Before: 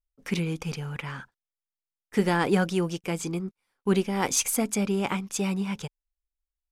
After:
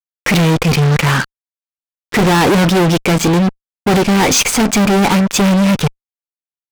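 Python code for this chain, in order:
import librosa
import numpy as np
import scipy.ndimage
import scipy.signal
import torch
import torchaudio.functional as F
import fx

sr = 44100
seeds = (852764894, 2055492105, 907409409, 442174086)

y = fx.air_absorb(x, sr, metres=130.0)
y = fx.fuzz(y, sr, gain_db=42.0, gate_db=-46.0)
y = y * 10.0 ** (3.5 / 20.0)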